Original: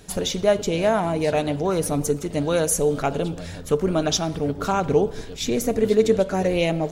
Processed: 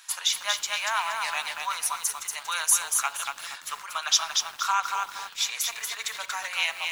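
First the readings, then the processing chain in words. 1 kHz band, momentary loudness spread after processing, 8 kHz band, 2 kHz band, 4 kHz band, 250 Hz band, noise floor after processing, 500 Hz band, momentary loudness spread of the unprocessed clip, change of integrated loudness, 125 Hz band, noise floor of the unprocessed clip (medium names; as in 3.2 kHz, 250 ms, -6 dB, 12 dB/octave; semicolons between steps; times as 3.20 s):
-1.5 dB, 10 LU, +3.5 dB, +4.0 dB, +4.0 dB, under -40 dB, -45 dBFS, -26.5 dB, 6 LU, -4.5 dB, under -40 dB, -36 dBFS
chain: elliptic high-pass 1 kHz, stop band 70 dB; bit-crushed delay 235 ms, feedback 35%, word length 8-bit, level -4 dB; trim +3 dB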